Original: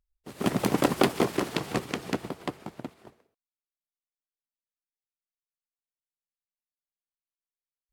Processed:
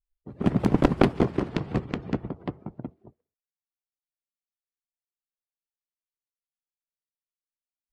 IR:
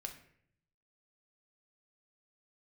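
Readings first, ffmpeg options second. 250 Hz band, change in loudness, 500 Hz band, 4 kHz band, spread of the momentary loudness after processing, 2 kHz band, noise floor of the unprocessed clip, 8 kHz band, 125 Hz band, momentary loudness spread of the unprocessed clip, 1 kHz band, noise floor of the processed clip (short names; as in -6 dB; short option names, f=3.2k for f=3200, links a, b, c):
+4.0 dB, +2.5 dB, +0.5 dB, -7.0 dB, 18 LU, -3.0 dB, under -85 dBFS, under -10 dB, +7.0 dB, 17 LU, -1.0 dB, under -85 dBFS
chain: -af "afftdn=nr=19:nf=-48,aeval=exprs='0.531*(cos(1*acos(clip(val(0)/0.531,-1,1)))-cos(1*PI/2))+0.106*(cos(3*acos(clip(val(0)/0.531,-1,1)))-cos(3*PI/2))':c=same,aemphasis=mode=reproduction:type=riaa,volume=3.5dB"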